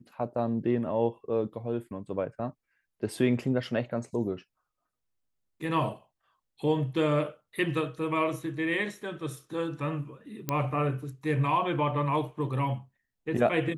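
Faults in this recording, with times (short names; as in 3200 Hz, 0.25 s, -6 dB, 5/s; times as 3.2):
10.49 pop -13 dBFS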